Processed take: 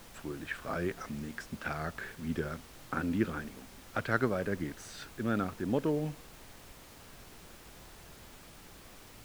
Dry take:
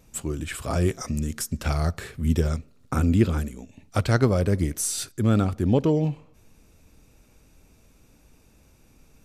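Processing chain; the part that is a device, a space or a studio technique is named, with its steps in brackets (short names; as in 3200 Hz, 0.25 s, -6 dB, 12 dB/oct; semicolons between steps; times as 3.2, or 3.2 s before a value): horn gramophone (BPF 180–3300 Hz; bell 1600 Hz +10 dB 0.52 oct; wow and flutter; pink noise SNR 15 dB); gain -8.5 dB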